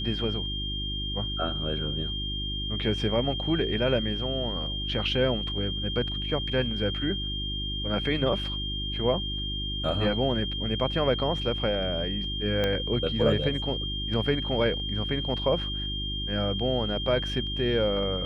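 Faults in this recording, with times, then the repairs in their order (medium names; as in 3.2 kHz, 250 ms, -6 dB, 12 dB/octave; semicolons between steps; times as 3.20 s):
hum 50 Hz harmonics 7 -34 dBFS
whine 3.2 kHz -32 dBFS
12.64 s: pop -14 dBFS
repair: de-click; de-hum 50 Hz, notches 7; band-stop 3.2 kHz, Q 30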